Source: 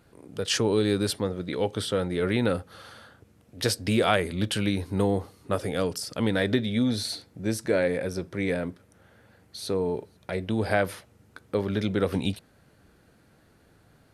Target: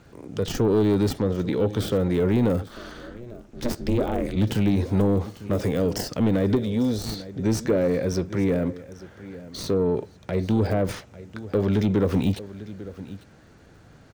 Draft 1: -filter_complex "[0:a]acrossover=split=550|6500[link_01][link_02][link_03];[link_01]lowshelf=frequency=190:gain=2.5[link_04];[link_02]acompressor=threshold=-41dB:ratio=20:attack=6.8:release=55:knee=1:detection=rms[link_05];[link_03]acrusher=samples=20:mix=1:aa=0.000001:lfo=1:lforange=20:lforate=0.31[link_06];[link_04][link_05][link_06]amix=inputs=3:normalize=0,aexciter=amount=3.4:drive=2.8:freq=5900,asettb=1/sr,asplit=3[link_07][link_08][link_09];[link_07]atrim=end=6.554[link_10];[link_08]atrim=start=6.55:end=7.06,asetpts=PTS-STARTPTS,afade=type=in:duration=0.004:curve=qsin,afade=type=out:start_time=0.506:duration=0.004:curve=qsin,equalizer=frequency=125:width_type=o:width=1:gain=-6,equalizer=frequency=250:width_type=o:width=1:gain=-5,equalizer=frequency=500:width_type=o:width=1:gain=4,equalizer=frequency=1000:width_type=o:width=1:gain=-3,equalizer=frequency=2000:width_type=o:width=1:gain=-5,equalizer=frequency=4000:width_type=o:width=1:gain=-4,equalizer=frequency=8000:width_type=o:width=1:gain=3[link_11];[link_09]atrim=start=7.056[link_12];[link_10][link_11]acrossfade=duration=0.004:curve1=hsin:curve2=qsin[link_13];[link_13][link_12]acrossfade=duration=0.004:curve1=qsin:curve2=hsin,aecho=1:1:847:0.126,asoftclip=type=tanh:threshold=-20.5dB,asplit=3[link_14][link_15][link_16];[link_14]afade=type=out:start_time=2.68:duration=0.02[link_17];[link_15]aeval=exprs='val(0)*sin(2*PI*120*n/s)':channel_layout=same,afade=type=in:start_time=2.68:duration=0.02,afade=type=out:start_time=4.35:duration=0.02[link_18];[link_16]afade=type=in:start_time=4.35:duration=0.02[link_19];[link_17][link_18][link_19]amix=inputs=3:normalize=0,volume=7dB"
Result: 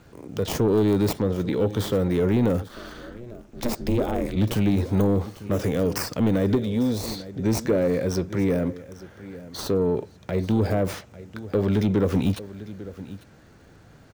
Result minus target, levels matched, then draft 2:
sample-and-hold swept by an LFO: distortion −10 dB
-filter_complex "[0:a]acrossover=split=550|6500[link_01][link_02][link_03];[link_01]lowshelf=frequency=190:gain=2.5[link_04];[link_02]acompressor=threshold=-41dB:ratio=20:attack=6.8:release=55:knee=1:detection=rms[link_05];[link_03]acrusher=samples=59:mix=1:aa=0.000001:lfo=1:lforange=59:lforate=0.31[link_06];[link_04][link_05][link_06]amix=inputs=3:normalize=0,aexciter=amount=3.4:drive=2.8:freq=5900,asettb=1/sr,asplit=3[link_07][link_08][link_09];[link_07]atrim=end=6.554[link_10];[link_08]atrim=start=6.55:end=7.06,asetpts=PTS-STARTPTS,afade=type=in:duration=0.004:curve=qsin,afade=type=out:start_time=0.506:duration=0.004:curve=qsin,equalizer=frequency=125:width_type=o:width=1:gain=-6,equalizer=frequency=250:width_type=o:width=1:gain=-5,equalizer=frequency=500:width_type=o:width=1:gain=4,equalizer=frequency=1000:width_type=o:width=1:gain=-3,equalizer=frequency=2000:width_type=o:width=1:gain=-5,equalizer=frequency=4000:width_type=o:width=1:gain=-4,equalizer=frequency=8000:width_type=o:width=1:gain=3[link_11];[link_09]atrim=start=7.056[link_12];[link_10][link_11]acrossfade=duration=0.004:curve1=hsin:curve2=qsin[link_13];[link_13][link_12]acrossfade=duration=0.004:curve1=qsin:curve2=hsin,aecho=1:1:847:0.126,asoftclip=type=tanh:threshold=-20.5dB,asplit=3[link_14][link_15][link_16];[link_14]afade=type=out:start_time=2.68:duration=0.02[link_17];[link_15]aeval=exprs='val(0)*sin(2*PI*120*n/s)':channel_layout=same,afade=type=in:start_time=2.68:duration=0.02,afade=type=out:start_time=4.35:duration=0.02[link_18];[link_16]afade=type=in:start_time=4.35:duration=0.02[link_19];[link_17][link_18][link_19]amix=inputs=3:normalize=0,volume=7dB"

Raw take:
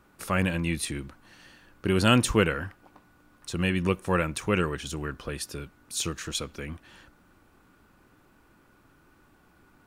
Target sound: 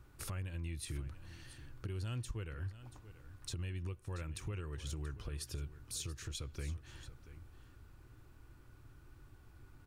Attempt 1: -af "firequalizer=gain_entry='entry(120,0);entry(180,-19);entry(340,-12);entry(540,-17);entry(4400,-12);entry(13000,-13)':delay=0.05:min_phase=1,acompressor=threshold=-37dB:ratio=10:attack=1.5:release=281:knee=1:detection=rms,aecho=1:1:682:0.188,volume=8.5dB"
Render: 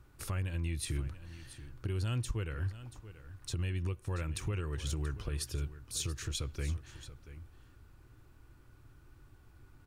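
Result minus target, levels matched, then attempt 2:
downward compressor: peak gain reduction −6.5 dB
-af "firequalizer=gain_entry='entry(120,0);entry(180,-19);entry(340,-12);entry(540,-17);entry(4400,-12);entry(13000,-13)':delay=0.05:min_phase=1,acompressor=threshold=-44dB:ratio=10:attack=1.5:release=281:knee=1:detection=rms,aecho=1:1:682:0.188,volume=8.5dB"

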